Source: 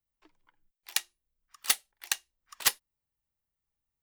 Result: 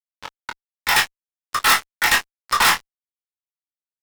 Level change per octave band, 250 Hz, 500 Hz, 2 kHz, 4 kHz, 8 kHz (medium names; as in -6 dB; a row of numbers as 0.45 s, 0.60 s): +20.5 dB, +18.0 dB, +19.0 dB, +12.0 dB, +7.0 dB